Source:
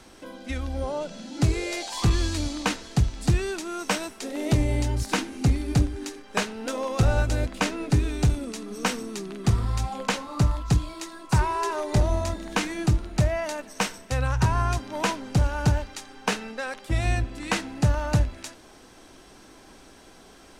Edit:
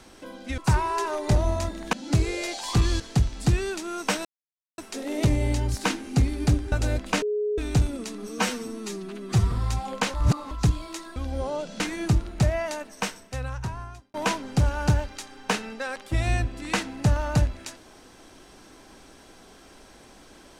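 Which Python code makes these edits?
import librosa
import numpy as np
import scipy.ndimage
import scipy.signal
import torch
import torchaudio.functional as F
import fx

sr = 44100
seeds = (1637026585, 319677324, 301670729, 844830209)

y = fx.edit(x, sr, fx.swap(start_s=0.58, length_s=0.64, other_s=11.23, other_length_s=1.35),
    fx.cut(start_s=2.29, length_s=0.52),
    fx.insert_silence(at_s=4.06, length_s=0.53),
    fx.cut(start_s=6.0, length_s=1.2),
    fx.bleep(start_s=7.7, length_s=0.36, hz=419.0, db=-23.0),
    fx.stretch_span(start_s=8.77, length_s=0.82, factor=1.5),
    fx.reverse_span(start_s=10.21, length_s=0.37),
    fx.fade_out_span(start_s=13.38, length_s=1.54), tone=tone)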